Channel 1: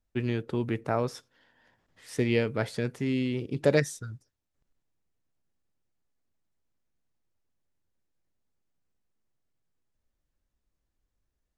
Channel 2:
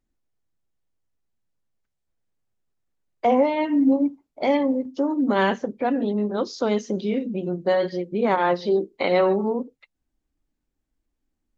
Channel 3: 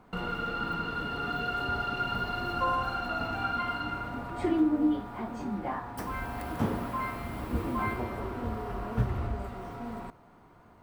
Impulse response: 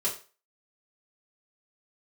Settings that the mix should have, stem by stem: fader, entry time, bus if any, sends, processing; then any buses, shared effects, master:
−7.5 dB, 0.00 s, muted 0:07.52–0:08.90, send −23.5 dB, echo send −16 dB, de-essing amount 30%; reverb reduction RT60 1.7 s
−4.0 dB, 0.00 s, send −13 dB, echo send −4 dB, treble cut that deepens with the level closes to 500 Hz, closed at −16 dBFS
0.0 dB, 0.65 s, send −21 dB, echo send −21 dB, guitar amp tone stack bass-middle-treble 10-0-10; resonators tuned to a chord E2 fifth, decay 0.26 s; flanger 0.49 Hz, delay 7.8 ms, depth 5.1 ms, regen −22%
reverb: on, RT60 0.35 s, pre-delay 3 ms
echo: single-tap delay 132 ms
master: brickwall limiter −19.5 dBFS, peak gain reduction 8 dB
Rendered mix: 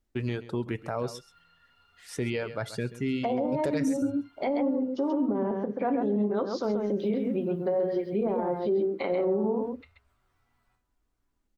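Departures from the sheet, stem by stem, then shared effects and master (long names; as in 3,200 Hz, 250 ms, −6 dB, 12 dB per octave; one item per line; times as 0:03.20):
stem 1 −7.5 dB → +0.5 dB
stem 3 0.0 dB → −8.5 dB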